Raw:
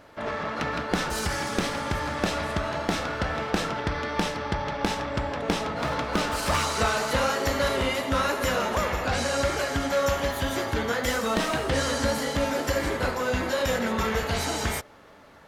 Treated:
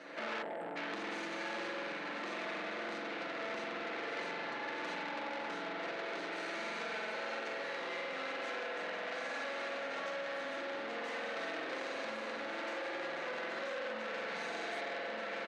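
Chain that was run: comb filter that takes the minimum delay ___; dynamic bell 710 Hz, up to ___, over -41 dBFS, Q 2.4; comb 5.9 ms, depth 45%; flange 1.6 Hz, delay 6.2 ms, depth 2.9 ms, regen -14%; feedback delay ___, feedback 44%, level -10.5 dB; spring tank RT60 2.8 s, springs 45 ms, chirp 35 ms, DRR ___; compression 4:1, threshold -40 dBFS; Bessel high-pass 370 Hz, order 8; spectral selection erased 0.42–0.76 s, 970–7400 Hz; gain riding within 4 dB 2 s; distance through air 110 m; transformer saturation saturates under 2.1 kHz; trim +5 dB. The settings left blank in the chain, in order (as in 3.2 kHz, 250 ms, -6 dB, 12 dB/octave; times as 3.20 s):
0.47 ms, +3 dB, 1185 ms, -6 dB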